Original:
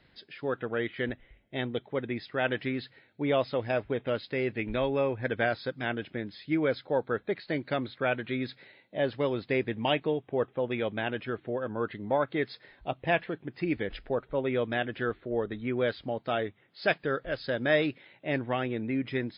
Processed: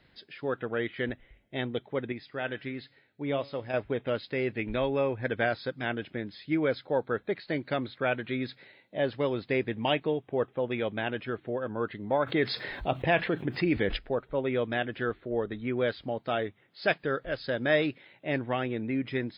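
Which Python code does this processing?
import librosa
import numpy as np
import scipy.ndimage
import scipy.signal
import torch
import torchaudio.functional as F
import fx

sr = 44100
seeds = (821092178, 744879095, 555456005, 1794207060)

y = fx.comb_fb(x, sr, f0_hz=140.0, decay_s=0.44, harmonics='all', damping=0.0, mix_pct=50, at=(2.12, 3.74))
y = fx.env_flatten(y, sr, amount_pct=50, at=(12.25, 13.96), fade=0.02)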